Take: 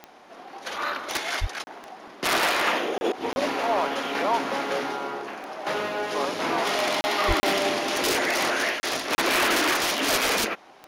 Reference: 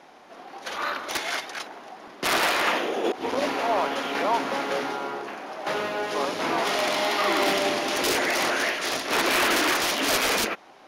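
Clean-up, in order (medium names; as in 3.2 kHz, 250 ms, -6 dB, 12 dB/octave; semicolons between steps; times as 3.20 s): de-click; 1.40–1.52 s: high-pass 140 Hz 24 dB/octave; 7.27–7.39 s: high-pass 140 Hz 24 dB/octave; interpolate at 1.64/2.98/3.33/7.01/7.40/8.80/9.15 s, 30 ms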